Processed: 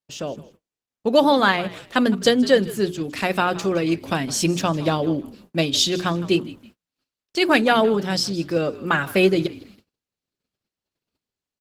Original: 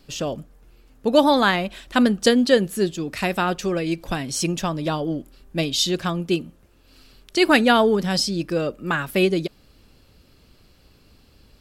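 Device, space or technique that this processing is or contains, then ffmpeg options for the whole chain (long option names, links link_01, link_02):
video call: -filter_complex "[0:a]equalizer=frequency=9600:width=2.2:gain=-3,bandreject=frequency=60:width_type=h:width=6,bandreject=frequency=120:width_type=h:width=6,bandreject=frequency=180:width_type=h:width=6,bandreject=frequency=240:width_type=h:width=6,bandreject=frequency=300:width_type=h:width=6,bandreject=frequency=360:width_type=h:width=6,bandreject=frequency=420:width_type=h:width=6,asplit=4[link_01][link_02][link_03][link_04];[link_02]adelay=161,afreqshift=-59,volume=-18dB[link_05];[link_03]adelay=322,afreqshift=-118,volume=-28.2dB[link_06];[link_04]adelay=483,afreqshift=-177,volume=-38.3dB[link_07];[link_01][link_05][link_06][link_07]amix=inputs=4:normalize=0,highpass=120,dynaudnorm=framelen=120:gausssize=11:maxgain=7.5dB,agate=range=-40dB:threshold=-45dB:ratio=16:detection=peak,volume=-2dB" -ar 48000 -c:a libopus -b:a 16k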